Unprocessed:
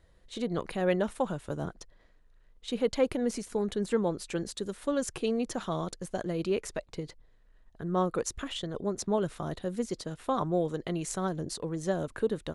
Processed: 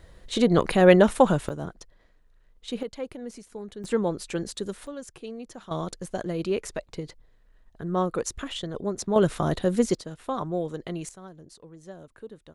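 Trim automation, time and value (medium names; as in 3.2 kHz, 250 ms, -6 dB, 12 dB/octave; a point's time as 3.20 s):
+12 dB
from 1.49 s +1 dB
from 2.83 s -8 dB
from 3.84 s +3 dB
from 4.87 s -8.5 dB
from 5.71 s +2.5 dB
from 9.16 s +10 dB
from 9.95 s -0.5 dB
from 11.09 s -13 dB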